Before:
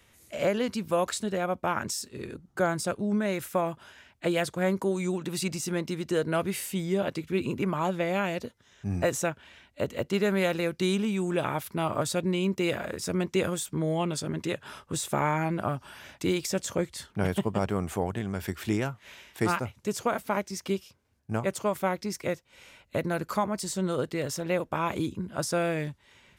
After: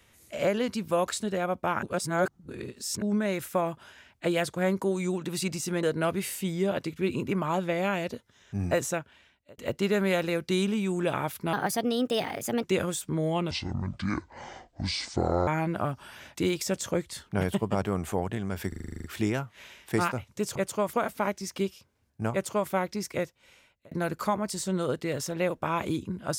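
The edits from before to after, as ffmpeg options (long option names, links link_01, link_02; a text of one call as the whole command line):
ffmpeg -i in.wav -filter_complex "[0:a]asplit=21[link_01][link_02][link_03][link_04][link_05][link_06][link_07][link_08][link_09][link_10][link_11][link_12][link_13][link_14][link_15][link_16][link_17][link_18][link_19][link_20][link_21];[link_01]atrim=end=1.832[link_22];[link_02]atrim=start=1.828:end=3.022,asetpts=PTS-STARTPTS,areverse[link_23];[link_03]atrim=start=3.018:end=5.832[link_24];[link_04]atrim=start=6.138:end=9.89,asetpts=PTS-STARTPTS,afade=type=out:start_time=2.962:duration=0.79[link_25];[link_05]atrim=start=9.89:end=11.844,asetpts=PTS-STARTPTS,afade=type=in:duration=0.004:curve=hsin[link_26];[link_06]atrim=start=11.84:end=13.28,asetpts=PTS-STARTPTS,asetrate=57330,aresample=44100,atrim=end_sample=48849,asetpts=PTS-STARTPTS[link_27];[link_07]atrim=start=13.276:end=14.154[link_28];[link_08]atrim=start=14.15:end=15.31,asetpts=PTS-STARTPTS,asetrate=26019,aresample=44100,atrim=end_sample=86705,asetpts=PTS-STARTPTS[link_29];[link_09]atrim=start=15.306:end=18.562[link_30];[link_10]atrim=start=18.518:end=18.562[link_31];[link_11]atrim=start=18.518:end=18.562[link_32];[link_12]atrim=start=18.518:end=18.562[link_33];[link_13]atrim=start=18.518:end=18.562[link_34];[link_14]atrim=start=18.518:end=18.562[link_35];[link_15]atrim=start=18.518:end=18.562[link_36];[link_16]atrim=start=18.518:end=18.562[link_37];[link_17]atrim=start=18.518:end=18.562[link_38];[link_18]atrim=start=18.518:end=20.032[link_39];[link_19]atrim=start=21.418:end=21.802[link_40];[link_20]atrim=start=20.028:end=23.01,asetpts=PTS-STARTPTS,afade=type=out:start_time=2.292:duration=0.69[link_41];[link_21]atrim=start=23.01,asetpts=PTS-STARTPTS,afade=type=in:duration=0.004:curve=hsin[link_42];[link_22][link_23]acrossfade=duration=0.004:curve1=hsin:curve2=hsin[link_43];[link_43][link_24]acrossfade=duration=0.004:curve1=hsin:curve2=hsin[link_44];[link_25][link_26]concat=n=2:v=0:a=1[link_45];[link_44][link_45]acrossfade=duration=0.004:curve1=hsin:curve2=hsin[link_46];[link_46][link_27]acrossfade=duration=0.004:curve1=hsin:curve2=hsin[link_47];[link_47][link_28]acrossfade=duration=0.004:curve1=hsin:curve2=hsin[link_48];[link_48][link_29]acrossfade=duration=0.004:curve1=hsin:curve2=hsin[link_49];[link_49][link_30]acrossfade=duration=0.004:curve1=hsin:curve2=hsin[link_50];[link_50][link_31]acrossfade=duration=0.004:curve1=hsin:curve2=hsin[link_51];[link_51][link_32]acrossfade=duration=0.004:curve1=hsin:curve2=hsin[link_52];[link_52][link_33]acrossfade=duration=0.004:curve1=hsin:curve2=hsin[link_53];[link_53][link_34]acrossfade=duration=0.004:curve1=hsin:curve2=hsin[link_54];[link_54][link_35]acrossfade=duration=0.004:curve1=hsin:curve2=hsin[link_55];[link_55][link_36]acrossfade=duration=0.004:curve1=hsin:curve2=hsin[link_56];[link_56][link_37]acrossfade=duration=0.004:curve1=hsin:curve2=hsin[link_57];[link_57][link_38]acrossfade=duration=0.004:curve1=hsin:curve2=hsin[link_58];[link_58][link_39]acrossfade=duration=0.004:curve1=hsin:curve2=hsin[link_59];[link_59][link_40]acrossfade=duration=0.004:curve1=hsin:curve2=hsin[link_60];[link_41][link_42]concat=n=2:v=0:a=1[link_61];[link_60][link_61]acrossfade=duration=0.004:curve1=hsin:curve2=hsin" out.wav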